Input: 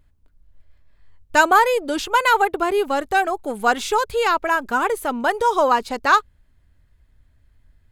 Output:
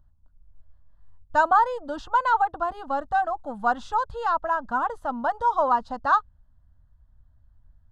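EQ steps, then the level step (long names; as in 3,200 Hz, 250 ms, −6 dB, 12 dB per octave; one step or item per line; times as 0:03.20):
head-to-tape spacing loss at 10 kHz 29 dB
phaser with its sweep stopped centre 950 Hz, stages 4
0.0 dB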